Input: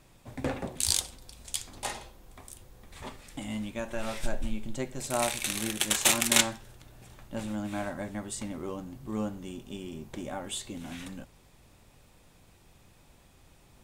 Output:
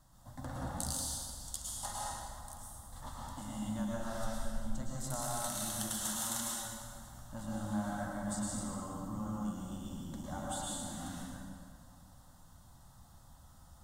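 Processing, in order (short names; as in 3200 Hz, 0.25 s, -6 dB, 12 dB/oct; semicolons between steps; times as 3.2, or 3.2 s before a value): compressor 10:1, threshold -31 dBFS, peak gain reduction 15.5 dB; fixed phaser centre 1000 Hz, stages 4; plate-style reverb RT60 2 s, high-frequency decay 0.75×, pre-delay 95 ms, DRR -5 dB; gain -4 dB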